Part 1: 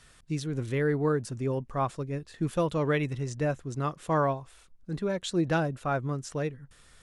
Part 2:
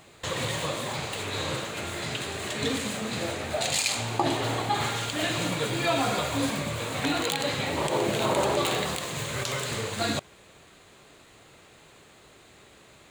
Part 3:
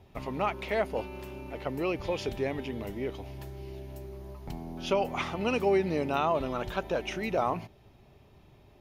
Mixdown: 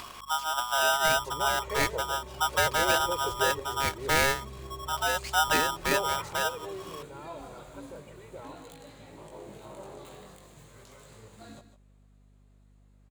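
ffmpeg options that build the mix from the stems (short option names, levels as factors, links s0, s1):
-filter_complex "[0:a]lowpass=f=2300:p=1,acompressor=mode=upward:threshold=0.02:ratio=2.5,aeval=exprs='val(0)*sgn(sin(2*PI*1100*n/s))':c=same,volume=1.19[s0];[1:a]equalizer=f=3000:t=o:w=2.2:g=-8,flanger=delay=18.5:depth=2.7:speed=0.4,adelay=1400,volume=0.158,asplit=2[s1][s2];[s2]volume=0.251[s3];[2:a]lowpass=1600,aecho=1:1:2.1:0.96,adelay=1000,volume=0.422,afade=t=out:st=6.19:d=0.45:silence=0.266073,asplit=2[s4][s5];[s5]volume=0.316[s6];[s3][s6]amix=inputs=2:normalize=0,aecho=0:1:152:1[s7];[s0][s1][s4][s7]amix=inputs=4:normalize=0,aeval=exprs='val(0)+0.00126*(sin(2*PI*50*n/s)+sin(2*PI*2*50*n/s)/2+sin(2*PI*3*50*n/s)/3+sin(2*PI*4*50*n/s)/4+sin(2*PI*5*50*n/s)/5)':c=same"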